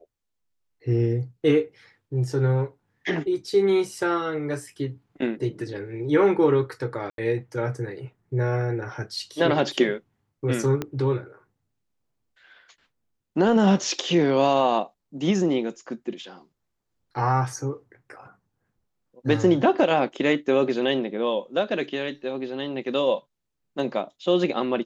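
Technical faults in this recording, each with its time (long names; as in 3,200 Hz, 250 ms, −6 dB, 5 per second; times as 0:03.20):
0:07.10–0:07.18: drop-out 82 ms
0:10.82: click −14 dBFS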